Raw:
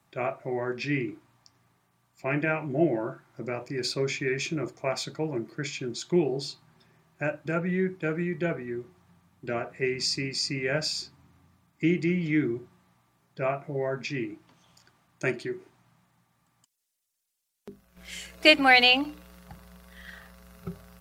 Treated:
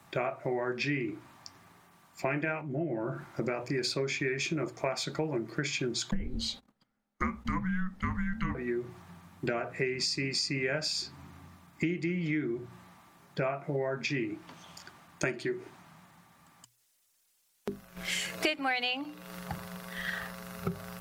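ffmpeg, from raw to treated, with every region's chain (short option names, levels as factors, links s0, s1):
-filter_complex "[0:a]asettb=1/sr,asplit=3[s0][s1][s2];[s0]atrim=end=2.614[s3];[s1]atrim=start=2.61:end=3.26,asetpts=PTS-STARTPTS,afade=t=in:d=0.004:c=qsin,afade=t=out:st=0.646:d=0.004:c=qsin,acompressor=threshold=0.00316:ratio=2:attack=3.2:release=140:knee=1:detection=peak,equalizer=f=110:w=0.34:g=8.5[s4];[s2]atrim=start=3.256[s5];[s3][s4]acrossfade=d=0.004:c1=hsin:c2=qsin[s6];[s6][s5]acrossfade=d=0.004:c1=qsin:c2=hsin,asettb=1/sr,asplit=3[s7][s8][s9];[s7]atrim=end=6.114[s10];[s8]atrim=start=6.11:end=8.55,asetpts=PTS-STARTPTS,afade=t=in:d=0.004:c=qsin,afade=t=out:st=2.436:d=0.004:c=qsin,agate=range=0.0355:threshold=0.00141:ratio=16:release=100:detection=peak,afreqshift=-370[s11];[s9]atrim=start=8.546[s12];[s10][s11]acrossfade=d=0.004:c1=hsin:c2=qsin[s13];[s13][s12]acrossfade=d=0.004:c1=qsin:c2=hsin,equalizer=f=1300:t=o:w=2.3:g=2.5,bandreject=f=60:t=h:w=6,bandreject=f=120:t=h:w=6,acompressor=threshold=0.0126:ratio=8,volume=2.82"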